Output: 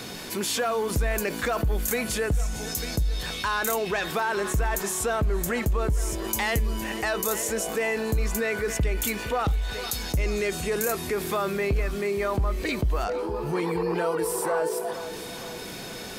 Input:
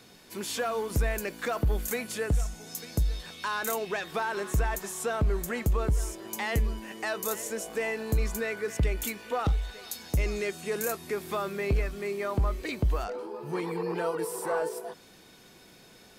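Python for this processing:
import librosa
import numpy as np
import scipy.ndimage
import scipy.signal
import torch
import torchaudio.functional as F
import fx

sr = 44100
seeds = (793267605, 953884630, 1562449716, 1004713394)

y = fx.high_shelf(x, sr, hz=4800.0, db=6.0, at=(6.24, 6.84))
y = fx.echo_feedback(y, sr, ms=462, feedback_pct=46, wet_db=-21)
y = fx.env_flatten(y, sr, amount_pct=50)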